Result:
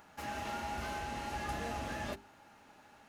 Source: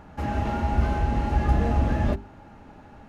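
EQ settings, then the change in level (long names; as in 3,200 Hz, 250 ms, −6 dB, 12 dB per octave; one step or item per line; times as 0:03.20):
spectral tilt +4 dB per octave
−8.5 dB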